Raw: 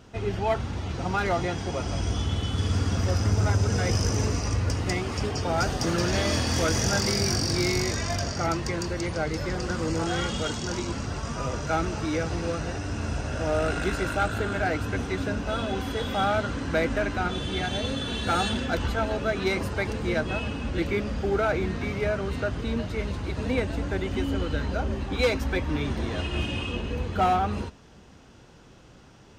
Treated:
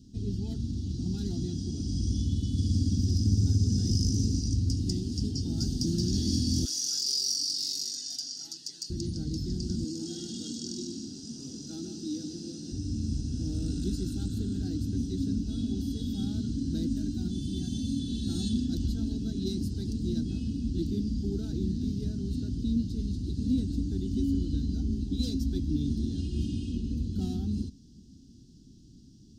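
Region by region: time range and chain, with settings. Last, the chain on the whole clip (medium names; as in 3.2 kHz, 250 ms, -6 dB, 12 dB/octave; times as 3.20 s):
6.65–8.90 s: high-pass 1.1 kHz + comb 7.1 ms, depth 81%
9.84–12.72 s: high-pass 300 Hz + delay 151 ms -7 dB
16.87–17.99 s: treble shelf 10 kHz +9.5 dB + comb of notches 430 Hz
whole clip: elliptic band-stop 260–4700 Hz, stop band 40 dB; tone controls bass -9 dB, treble -13 dB; trim +8 dB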